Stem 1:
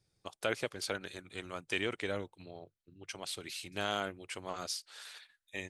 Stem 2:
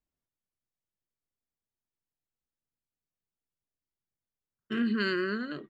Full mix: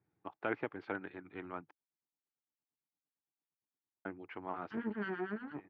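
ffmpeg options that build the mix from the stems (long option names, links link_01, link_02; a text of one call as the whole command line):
ffmpeg -i stem1.wav -i stem2.wav -filter_complex "[0:a]volume=-1dB,asplit=3[link_01][link_02][link_03];[link_01]atrim=end=1.71,asetpts=PTS-STARTPTS,afade=type=out:start_time=1.706:duration=0.004:curve=hsin[link_04];[link_02]atrim=start=1.71:end=4.05,asetpts=PTS-STARTPTS,volume=0[link_05];[link_03]atrim=start=4.05,asetpts=PTS-STARTPTS,afade=type=in:duration=0.004:curve=hsin[link_06];[link_04][link_05][link_06]concat=n=3:v=0:a=1[link_07];[1:a]acrossover=split=1300[link_08][link_09];[link_08]aeval=exprs='val(0)*(1-1/2+1/2*cos(2*PI*8.8*n/s))':channel_layout=same[link_10];[link_09]aeval=exprs='val(0)*(1-1/2-1/2*cos(2*PI*8.8*n/s))':channel_layout=same[link_11];[link_10][link_11]amix=inputs=2:normalize=0,aeval=exprs='max(val(0),0)':channel_layout=same,highshelf=frequency=3600:gain=6.5,volume=-0.5dB,asplit=2[link_12][link_13];[link_13]apad=whole_len=251191[link_14];[link_07][link_14]sidechaincompress=threshold=-53dB:ratio=8:attack=16:release=877[link_15];[link_15][link_12]amix=inputs=2:normalize=0,highpass=130,equalizer=frequency=300:width_type=q:width=4:gain=7,equalizer=frequency=550:width_type=q:width=4:gain=-7,equalizer=frequency=860:width_type=q:width=4:gain=6,lowpass=frequency=2000:width=0.5412,lowpass=frequency=2000:width=1.3066" out.wav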